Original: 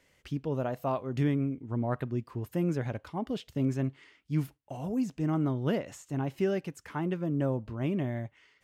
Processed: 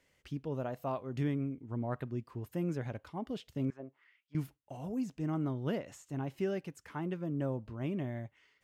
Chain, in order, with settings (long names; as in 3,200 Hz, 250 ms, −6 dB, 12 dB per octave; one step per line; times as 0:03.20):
0:03.70–0:04.35: envelope filter 530–3,400 Hz, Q 2.1, down, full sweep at −27 dBFS
level −5.5 dB